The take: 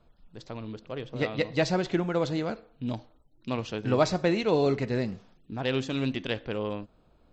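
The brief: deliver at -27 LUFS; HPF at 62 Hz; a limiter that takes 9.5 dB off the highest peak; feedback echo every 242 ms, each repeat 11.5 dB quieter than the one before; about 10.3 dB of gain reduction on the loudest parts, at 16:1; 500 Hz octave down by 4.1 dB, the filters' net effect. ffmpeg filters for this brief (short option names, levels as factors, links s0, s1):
-af "highpass=62,equalizer=f=500:t=o:g=-5,acompressor=threshold=0.0355:ratio=16,alimiter=level_in=2:limit=0.0631:level=0:latency=1,volume=0.501,aecho=1:1:242|484|726:0.266|0.0718|0.0194,volume=4.73"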